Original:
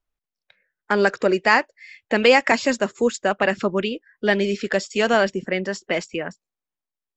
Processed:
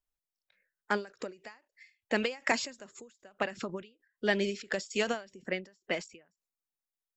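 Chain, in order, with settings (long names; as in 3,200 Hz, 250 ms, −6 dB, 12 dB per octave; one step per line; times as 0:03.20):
high-shelf EQ 4,900 Hz +9 dB
every ending faded ahead of time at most 180 dB per second
level −9 dB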